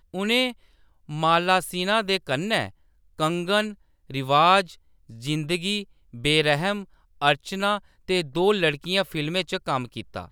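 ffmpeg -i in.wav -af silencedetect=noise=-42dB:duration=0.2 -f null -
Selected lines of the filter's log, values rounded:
silence_start: 0.52
silence_end: 1.09 | silence_duration: 0.56
silence_start: 2.71
silence_end: 3.18 | silence_duration: 0.48
silence_start: 3.74
silence_end: 4.10 | silence_duration: 0.35
silence_start: 4.74
silence_end: 5.10 | silence_duration: 0.35
silence_start: 5.84
silence_end: 6.13 | silence_duration: 0.30
silence_start: 6.84
silence_end: 7.22 | silence_duration: 0.37
silence_start: 7.79
silence_end: 8.08 | silence_duration: 0.29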